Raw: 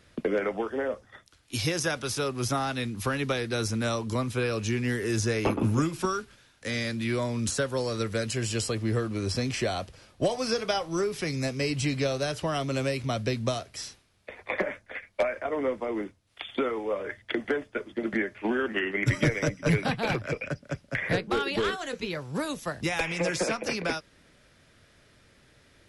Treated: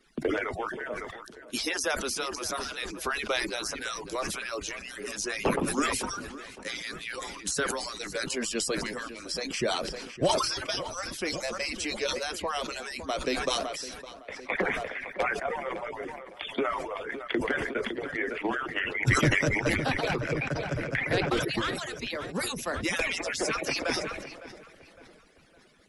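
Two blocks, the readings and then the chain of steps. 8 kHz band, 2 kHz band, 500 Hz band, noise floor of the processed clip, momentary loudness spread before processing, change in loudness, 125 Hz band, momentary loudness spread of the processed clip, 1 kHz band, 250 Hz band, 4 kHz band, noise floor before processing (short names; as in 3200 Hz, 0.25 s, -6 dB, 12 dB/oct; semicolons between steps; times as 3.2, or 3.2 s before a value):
+2.0 dB, +2.0 dB, -2.5 dB, -52 dBFS, 8 LU, -1.0 dB, -6.0 dB, 10 LU, +1.0 dB, -4.0 dB, +2.0 dB, -61 dBFS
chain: median-filter separation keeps percussive; darkening echo 0.559 s, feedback 45%, low-pass 3100 Hz, level -15.5 dB; sustainer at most 40 dB/s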